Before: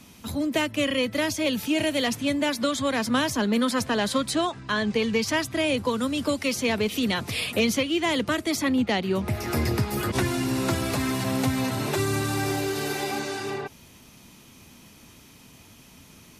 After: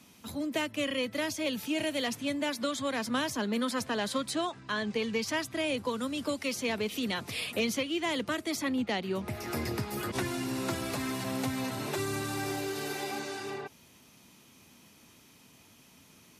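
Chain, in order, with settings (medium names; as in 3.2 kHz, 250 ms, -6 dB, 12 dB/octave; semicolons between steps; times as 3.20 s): high-pass 150 Hz 6 dB/octave; trim -6.5 dB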